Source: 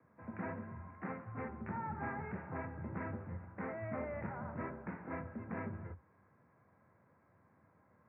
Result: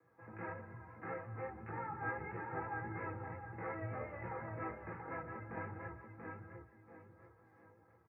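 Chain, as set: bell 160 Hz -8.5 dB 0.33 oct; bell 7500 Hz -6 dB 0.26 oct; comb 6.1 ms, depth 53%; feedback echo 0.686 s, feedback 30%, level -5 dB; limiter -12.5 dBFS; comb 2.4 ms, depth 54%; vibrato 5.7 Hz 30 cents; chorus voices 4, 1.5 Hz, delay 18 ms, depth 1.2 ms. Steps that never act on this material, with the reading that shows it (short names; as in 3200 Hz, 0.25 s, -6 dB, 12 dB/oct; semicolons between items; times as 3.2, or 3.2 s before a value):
bell 7500 Hz: input band ends at 2400 Hz; limiter -12.5 dBFS: input peak -27.5 dBFS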